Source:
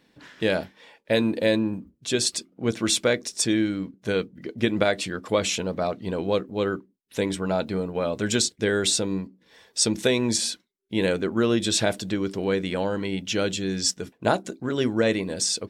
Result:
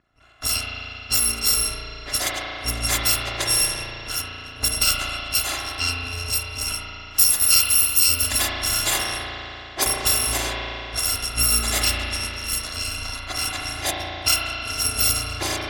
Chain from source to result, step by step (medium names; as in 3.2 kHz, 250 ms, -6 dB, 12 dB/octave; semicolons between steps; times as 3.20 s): bit-reversed sample order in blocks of 256 samples; 6.74–8.22 s: treble shelf 4.7 kHz +9.5 dB; level-controlled noise filter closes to 1.9 kHz, open at -17.5 dBFS; spring tank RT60 3.3 s, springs 35 ms, chirp 35 ms, DRR -3 dB; trim +3 dB